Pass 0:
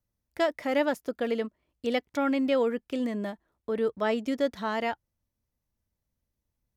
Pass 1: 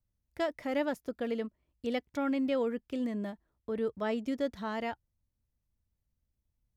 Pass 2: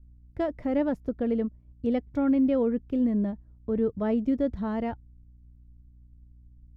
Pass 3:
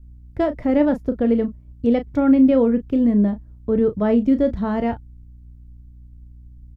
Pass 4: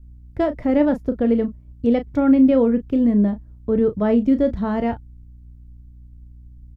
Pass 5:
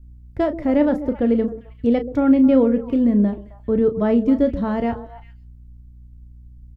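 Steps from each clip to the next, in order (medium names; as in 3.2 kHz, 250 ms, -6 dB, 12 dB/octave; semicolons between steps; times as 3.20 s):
bass shelf 170 Hz +11 dB; trim -7 dB
hum 60 Hz, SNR 34 dB; tilt EQ -4.5 dB/octave
doubling 34 ms -10.5 dB; trim +8 dB
no audible change
repeats whose band climbs or falls 132 ms, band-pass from 370 Hz, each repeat 1.4 oct, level -9 dB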